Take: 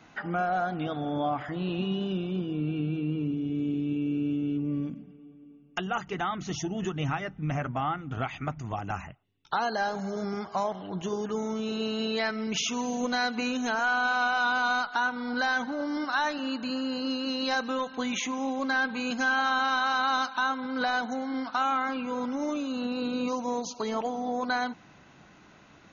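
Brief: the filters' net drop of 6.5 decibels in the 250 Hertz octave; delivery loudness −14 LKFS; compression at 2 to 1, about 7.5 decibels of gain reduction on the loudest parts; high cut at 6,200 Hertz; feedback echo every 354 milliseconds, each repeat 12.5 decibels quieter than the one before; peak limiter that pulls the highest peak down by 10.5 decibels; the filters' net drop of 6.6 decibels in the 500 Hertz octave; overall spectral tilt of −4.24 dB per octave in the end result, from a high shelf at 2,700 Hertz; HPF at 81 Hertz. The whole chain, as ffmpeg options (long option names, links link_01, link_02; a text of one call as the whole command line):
ffmpeg -i in.wav -af "highpass=81,lowpass=6200,equalizer=frequency=250:width_type=o:gain=-6,equalizer=frequency=500:width_type=o:gain=-7,highshelf=frequency=2700:gain=3.5,acompressor=threshold=-37dB:ratio=2,alimiter=level_in=6.5dB:limit=-24dB:level=0:latency=1,volume=-6.5dB,aecho=1:1:354|708|1062:0.237|0.0569|0.0137,volume=25dB" out.wav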